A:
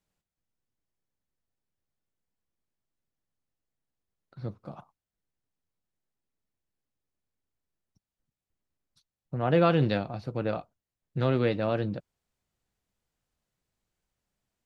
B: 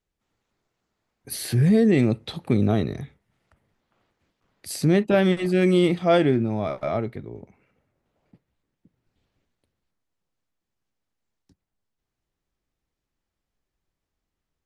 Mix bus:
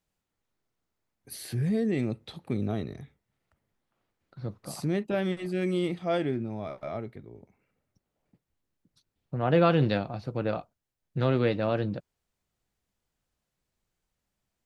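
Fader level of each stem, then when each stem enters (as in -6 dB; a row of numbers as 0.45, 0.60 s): +0.5, -9.5 dB; 0.00, 0.00 s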